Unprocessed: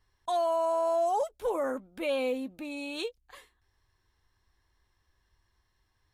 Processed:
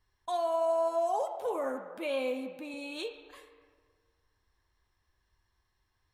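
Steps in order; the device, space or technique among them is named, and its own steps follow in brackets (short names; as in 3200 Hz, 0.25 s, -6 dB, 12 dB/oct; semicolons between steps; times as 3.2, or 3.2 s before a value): filtered reverb send (on a send: HPF 570 Hz 12 dB/oct + LPF 3500 Hz 12 dB/oct + reverb RT60 1.7 s, pre-delay 6 ms, DRR 5 dB); 0.63–2.74 on the sum: HPF 130 Hz 12 dB/oct; gain -3.5 dB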